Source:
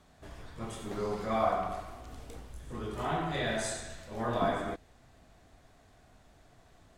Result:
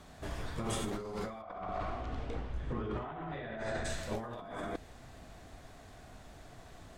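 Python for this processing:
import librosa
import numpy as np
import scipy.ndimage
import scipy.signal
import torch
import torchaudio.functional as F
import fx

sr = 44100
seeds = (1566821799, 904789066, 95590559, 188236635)

y = fx.lowpass(x, sr, hz=fx.line((1.41, 3800.0), (3.84, 1900.0)), slope=12, at=(1.41, 3.84), fade=0.02)
y = fx.over_compress(y, sr, threshold_db=-41.0, ratio=-1.0)
y = y * librosa.db_to_amplitude(2.0)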